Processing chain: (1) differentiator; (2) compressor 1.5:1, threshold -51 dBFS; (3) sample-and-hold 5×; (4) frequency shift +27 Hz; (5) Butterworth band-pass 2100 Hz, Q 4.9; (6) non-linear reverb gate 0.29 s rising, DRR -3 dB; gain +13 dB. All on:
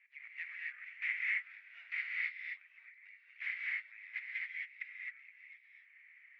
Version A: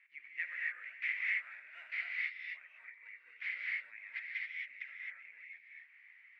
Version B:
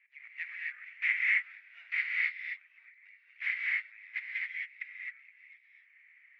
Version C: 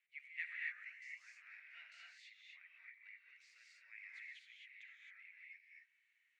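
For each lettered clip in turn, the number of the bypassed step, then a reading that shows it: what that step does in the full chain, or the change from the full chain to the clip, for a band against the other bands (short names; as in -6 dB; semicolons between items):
1, momentary loudness spread change -4 LU; 2, momentary loudness spread change -6 LU; 3, crest factor change +3.5 dB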